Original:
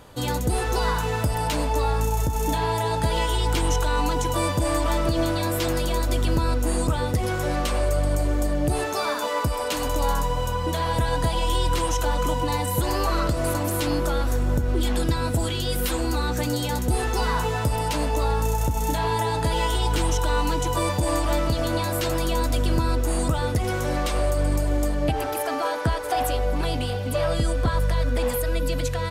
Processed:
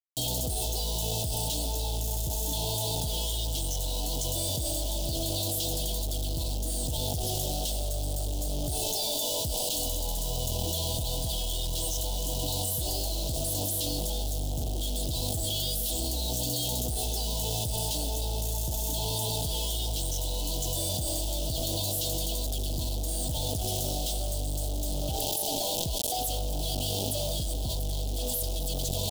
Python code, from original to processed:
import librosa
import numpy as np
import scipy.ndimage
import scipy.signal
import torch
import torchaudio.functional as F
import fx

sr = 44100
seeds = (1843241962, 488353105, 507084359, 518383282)

y = x + 10.0 ** (-32.0 / 20.0) * np.sin(2.0 * np.pi * 640.0 * np.arange(len(x)) / sr)
y = fx.tone_stack(y, sr, knobs='5-5-5')
y = fx.quant_companded(y, sr, bits=2)
y = scipy.signal.sosfilt(scipy.signal.ellip(3, 1.0, 40, [780.0, 3200.0], 'bandstop', fs=sr, output='sos'), y)
y = 10.0 ** (-19.5 / 20.0) * np.tanh(y / 10.0 ** (-19.5 / 20.0))
y = fx.env_flatten(y, sr, amount_pct=100)
y = F.gain(torch.from_numpy(y), -3.0).numpy()